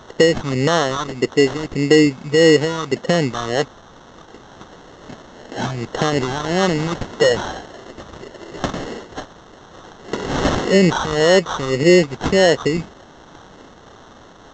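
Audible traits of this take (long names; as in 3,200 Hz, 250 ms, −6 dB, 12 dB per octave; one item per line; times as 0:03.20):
a quantiser's noise floor 8 bits, dither triangular
phaser sweep stages 2, 1.7 Hz, lowest notch 470–2,400 Hz
aliases and images of a low sample rate 2,400 Hz, jitter 0%
mu-law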